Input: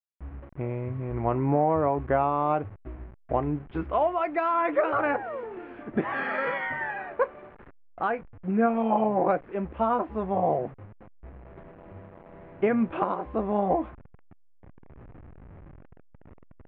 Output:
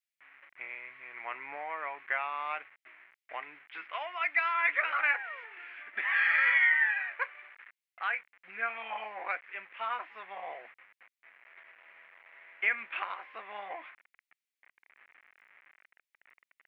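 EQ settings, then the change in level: resonant high-pass 2100 Hz, resonance Q 3.2; +1.5 dB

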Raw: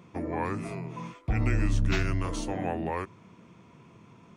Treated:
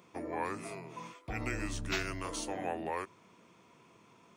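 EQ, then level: tone controls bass -12 dB, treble +8 dB; bell 6400 Hz -3 dB 0.77 oct; -3.5 dB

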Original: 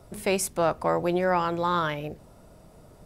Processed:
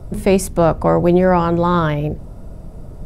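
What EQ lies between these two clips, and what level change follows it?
tilt -3.5 dB/oct; high shelf 6200 Hz +10 dB; +7.0 dB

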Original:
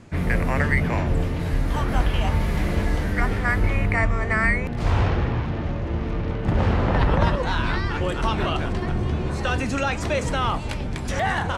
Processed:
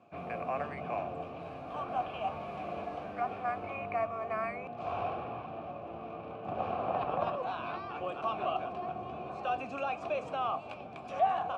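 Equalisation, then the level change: vowel filter a; HPF 110 Hz 12 dB/oct; low shelf 280 Hz +9.5 dB; 0.0 dB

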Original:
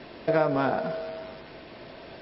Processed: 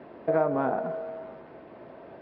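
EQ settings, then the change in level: HPF 190 Hz 6 dB/oct; LPF 1200 Hz 12 dB/oct; 0.0 dB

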